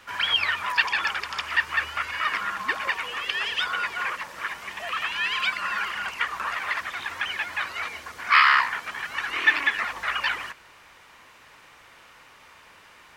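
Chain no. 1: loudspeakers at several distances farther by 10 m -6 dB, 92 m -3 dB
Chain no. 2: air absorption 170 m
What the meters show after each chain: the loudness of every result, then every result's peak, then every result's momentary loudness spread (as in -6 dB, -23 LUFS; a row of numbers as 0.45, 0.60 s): -22.5, -26.5 LUFS; -2.5, -5.5 dBFS; 10, 11 LU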